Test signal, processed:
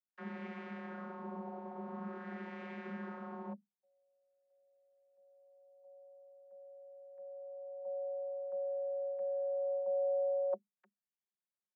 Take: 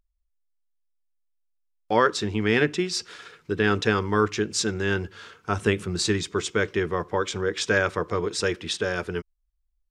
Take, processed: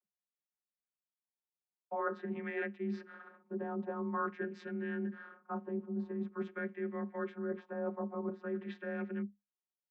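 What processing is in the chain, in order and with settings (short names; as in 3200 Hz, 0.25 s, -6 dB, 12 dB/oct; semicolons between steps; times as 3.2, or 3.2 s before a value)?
vocoder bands 32, saw 177 Hz; reverse; compressor 10:1, threshold -30 dBFS; reverse; LFO low-pass sine 0.47 Hz 840–2100 Hz; frequency shift +25 Hz; gain -5 dB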